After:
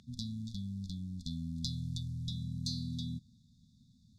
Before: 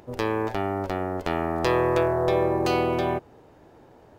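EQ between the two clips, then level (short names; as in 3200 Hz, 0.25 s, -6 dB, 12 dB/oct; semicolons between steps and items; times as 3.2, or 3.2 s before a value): brick-wall FIR band-stop 250–3400 Hz; LPF 6300 Hz 12 dB/oct; low shelf 150 Hz -9 dB; 0.0 dB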